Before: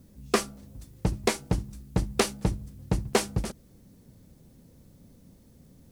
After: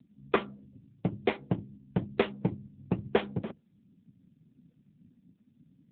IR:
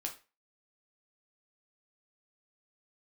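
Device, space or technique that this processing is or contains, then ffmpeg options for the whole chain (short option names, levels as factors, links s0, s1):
mobile call with aggressive noise cancelling: -af "highpass=130,afftdn=nr=23:nf=-46" -ar 8000 -c:a libopencore_amrnb -b:a 7950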